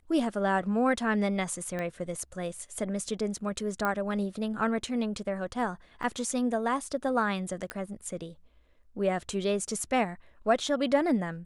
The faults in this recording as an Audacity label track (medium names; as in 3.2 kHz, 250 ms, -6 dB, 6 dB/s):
1.790000	1.790000	pop -21 dBFS
3.850000	3.850000	pop -16 dBFS
6.030000	6.030000	dropout 2.4 ms
7.700000	7.700000	pop -18 dBFS